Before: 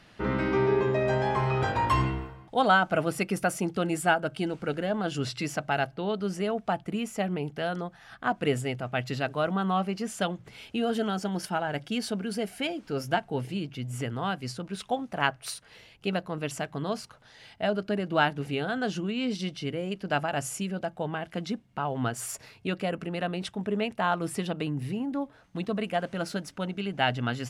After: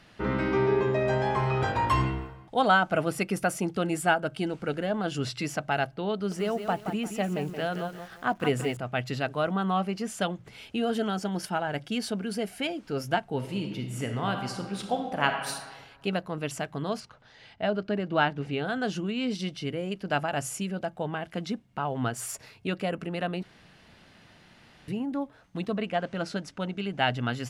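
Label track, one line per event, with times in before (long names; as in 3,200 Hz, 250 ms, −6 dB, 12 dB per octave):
6.140000	8.770000	feedback echo at a low word length 174 ms, feedback 35%, word length 8 bits, level −8 dB
13.360000	15.550000	thrown reverb, RT60 1.4 s, DRR 4 dB
17.000000	18.650000	high-frequency loss of the air 82 metres
23.430000	24.880000	fill with room tone
25.750000	27.120000	low-pass filter 5,300 Hz → 11,000 Hz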